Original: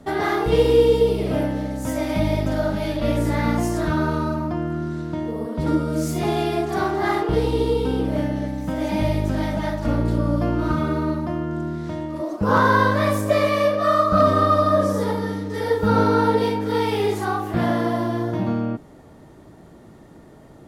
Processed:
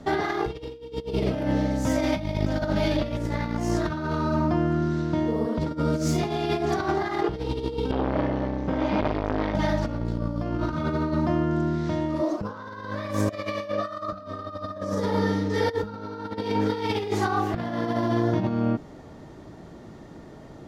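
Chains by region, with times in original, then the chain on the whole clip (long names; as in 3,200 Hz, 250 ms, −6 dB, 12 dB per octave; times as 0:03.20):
0:07.91–0:09.55: low-pass filter 3,500 Hz + saturating transformer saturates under 820 Hz
whole clip: high shelf with overshoot 7,600 Hz −8 dB, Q 1.5; compressor whose output falls as the input rises −24 dBFS, ratio −0.5; level −1.5 dB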